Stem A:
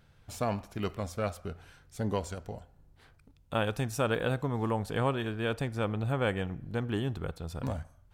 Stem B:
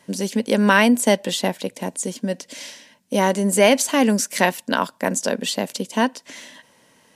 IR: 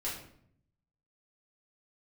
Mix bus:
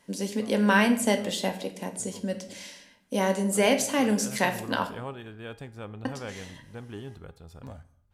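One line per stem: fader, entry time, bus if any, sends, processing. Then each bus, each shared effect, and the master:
0:03.86 −11.5 dB → 0:04.45 −1.5 dB, 0.00 s, send −23 dB, no processing
−2.5 dB, 0.00 s, muted 0:04.87–0:06.05, send −6 dB, no processing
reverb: on, RT60 0.65 s, pre-delay 4 ms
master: tuned comb filter 410 Hz, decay 0.43 s, mix 60%

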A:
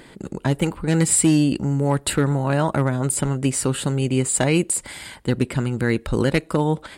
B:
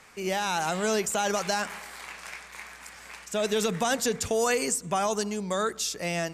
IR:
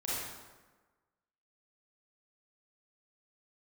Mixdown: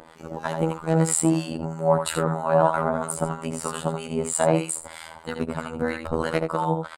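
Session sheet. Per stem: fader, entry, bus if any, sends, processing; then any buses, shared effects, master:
−3.0 dB, 0.00 s, no send, echo send −6 dB, no processing
−11.5 dB, 0.00 s, no send, no echo send, high-shelf EQ 3,100 Hz +5.5 dB; soft clipping −25.5 dBFS, distortion −9 dB; automatic ducking −19 dB, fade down 1.75 s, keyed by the first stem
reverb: not used
echo: single-tap delay 79 ms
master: flat-topped bell 850 Hz +11.5 dB; two-band tremolo in antiphase 3.1 Hz, depth 70%, crossover 1,100 Hz; phases set to zero 80.9 Hz

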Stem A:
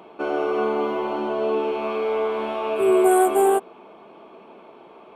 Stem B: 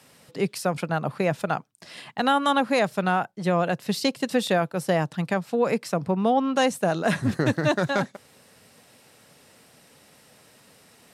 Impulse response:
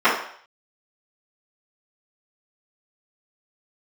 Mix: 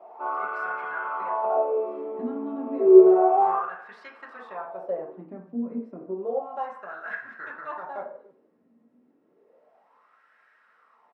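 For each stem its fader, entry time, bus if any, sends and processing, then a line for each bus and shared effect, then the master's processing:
−7.0 dB, 0.00 s, send −10 dB, no echo send, no processing
−2.0 dB, 0.00 s, send −17 dB, echo send −17 dB, downward compressor 1.5 to 1, threshold −35 dBFS, peak gain reduction 7 dB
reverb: on, RT60 0.60 s, pre-delay 3 ms
echo: single-tap delay 299 ms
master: LFO wah 0.31 Hz 240–1,600 Hz, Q 4.7; high-shelf EQ 5,400 Hz −7.5 dB

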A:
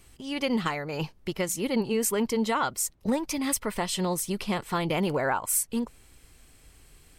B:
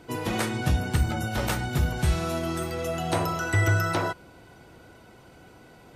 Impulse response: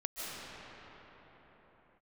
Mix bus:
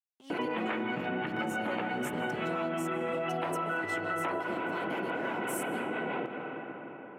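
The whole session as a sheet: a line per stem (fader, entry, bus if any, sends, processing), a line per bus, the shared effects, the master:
−11.5 dB, 0.00 s, send −15.5 dB, notch filter 4,800 Hz, Q 11; dead-zone distortion −43 dBFS
−3.0 dB, 0.30 s, send −8 dB, Butterworth low-pass 3,000 Hz 48 dB per octave; two-band tremolo in antiphase 5.9 Hz, depth 50%, crossover 710 Hz; envelope flattener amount 70%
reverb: on, pre-delay 110 ms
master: high-pass filter 200 Hz 24 dB per octave; downward compressor, threshold −30 dBFS, peak gain reduction 10 dB

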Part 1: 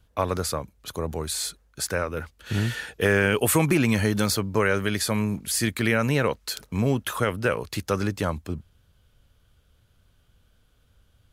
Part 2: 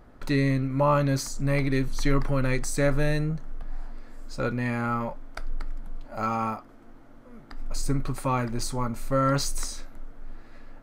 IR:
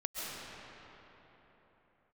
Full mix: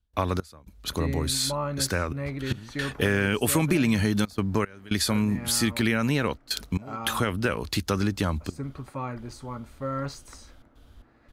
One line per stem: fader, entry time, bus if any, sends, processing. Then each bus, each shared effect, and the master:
+2.0 dB, 0.00 s, no send, graphic EQ with 10 bands 125 Hz −9 dB, 500 Hz −7 dB, 4,000 Hz +5 dB; gate pattern ".xx..xxxxxxxxxxx" 113 BPM −24 dB; low-shelf EQ 490 Hz +10 dB
+3.0 dB, 0.70 s, no send, noise gate with hold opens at −38 dBFS; high-pass filter 44 Hz 24 dB per octave; high-shelf EQ 4,800 Hz −10.5 dB; automatic ducking −10 dB, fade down 1.30 s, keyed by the first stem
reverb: not used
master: downward compressor 2 to 1, threshold −24 dBFS, peak gain reduction 7.5 dB

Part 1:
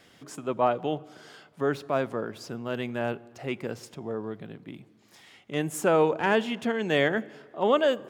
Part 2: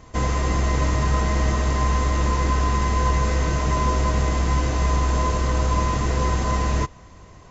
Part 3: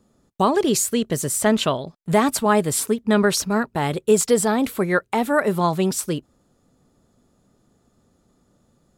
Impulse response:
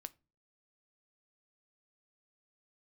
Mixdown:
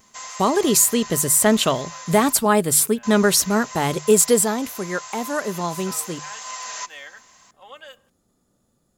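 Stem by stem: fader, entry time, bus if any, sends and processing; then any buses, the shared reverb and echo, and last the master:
−19.5 dB, 0.00 s, send −5 dB, high-pass filter 1,100 Hz 12 dB per octave; comb filter 3.8 ms, depth 55%
−11.5 dB, 0.00 s, muted 0:02.33–0:03.03, send −7.5 dB, inverse Chebyshev high-pass filter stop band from 160 Hz, stop band 70 dB; high-shelf EQ 3,000 Hz +10.5 dB; pitch vibrato 0.83 Hz 20 cents; automatic ducking −11 dB, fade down 1.35 s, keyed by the third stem
0:04.36 −2.5 dB → 0:04.68 −10.5 dB, 0.00 s, no send, mains-hum notches 50/100/150 Hz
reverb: on, pre-delay 6 ms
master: high-shelf EQ 8,000 Hz +11.5 dB; automatic gain control gain up to 4.5 dB

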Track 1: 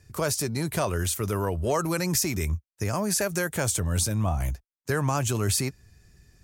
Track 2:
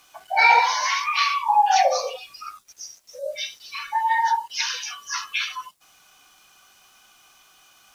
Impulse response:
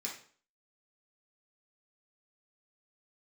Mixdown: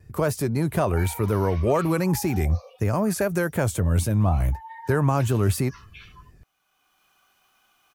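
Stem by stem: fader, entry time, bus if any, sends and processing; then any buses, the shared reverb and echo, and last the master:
+2.5 dB, 0.00 s, no send, tilt shelving filter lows +3 dB, about 1,200 Hz; pitch vibrato 4 Hz 51 cents
−6.5 dB, 0.60 s, no send, downward compressor, threshold −19 dBFS, peak gain reduction 8.5 dB; automatic ducking −11 dB, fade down 1.25 s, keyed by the first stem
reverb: not used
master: parametric band 6,000 Hz −9 dB 1.6 octaves

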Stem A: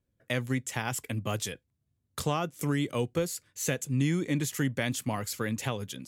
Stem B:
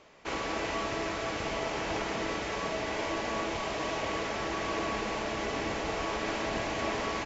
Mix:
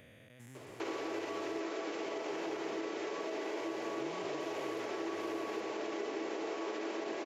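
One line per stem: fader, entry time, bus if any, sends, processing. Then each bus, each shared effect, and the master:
−14.5 dB, 0.00 s, no send, spectrum averaged block by block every 400 ms; high-shelf EQ 7,300 Hz +8 dB; sample-and-hold tremolo, depth 70%
+2.5 dB, 0.55 s, no send, brickwall limiter −27 dBFS, peak gain reduction 7.5 dB; high-pass with resonance 360 Hz, resonance Q 4.2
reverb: not used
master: downward compressor 2 to 1, threshold −44 dBFS, peak gain reduction 11 dB

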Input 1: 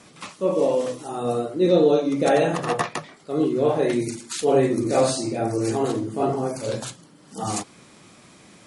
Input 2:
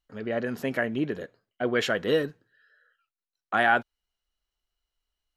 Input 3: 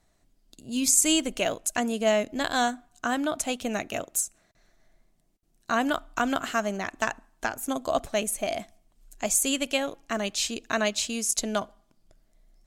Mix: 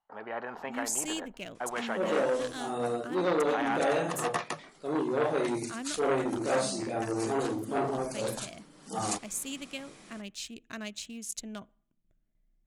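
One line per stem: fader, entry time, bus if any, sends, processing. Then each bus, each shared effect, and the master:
−11.5 dB, 1.55 s, no send, automatic gain control gain up to 9 dB
+0.5 dB, 0.00 s, no send, resonant band-pass 850 Hz, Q 5.9; every bin compressed towards the loudest bin 2 to 1
−4.5 dB, 0.00 s, no send, adaptive Wiener filter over 9 samples; noise gate with hold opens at −55 dBFS; drawn EQ curve 180 Hz 0 dB, 730 Hz −15 dB, 2,500 Hz −6 dB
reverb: not used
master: low-shelf EQ 150 Hz −7.5 dB; saturating transformer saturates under 1,100 Hz

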